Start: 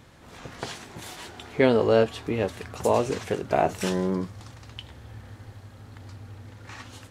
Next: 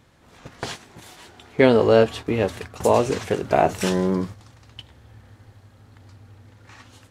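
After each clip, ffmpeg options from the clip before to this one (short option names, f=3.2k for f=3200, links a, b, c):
-af "agate=range=-9dB:threshold=-37dB:ratio=16:detection=peak,volume=4.5dB"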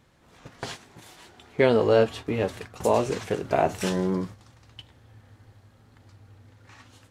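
-af "flanger=delay=5:depth=2.7:regen=-74:speed=0.68:shape=triangular"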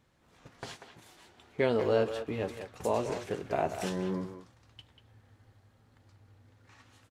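-filter_complex "[0:a]asplit=2[a][b];[b]adelay=190,highpass=300,lowpass=3.4k,asoftclip=type=hard:threshold=-15.5dB,volume=-8dB[c];[a][c]amix=inputs=2:normalize=0,volume=-8dB"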